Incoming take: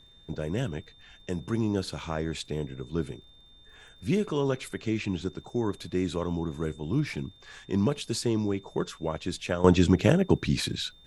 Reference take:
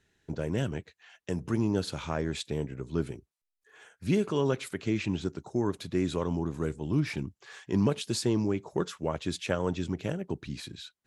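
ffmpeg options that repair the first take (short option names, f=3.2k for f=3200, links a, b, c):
-af "adeclick=t=4,bandreject=f=3.6k:w=30,agate=range=-21dB:threshold=-46dB,asetnsamples=n=441:p=0,asendcmd='9.64 volume volume -11.5dB',volume=0dB"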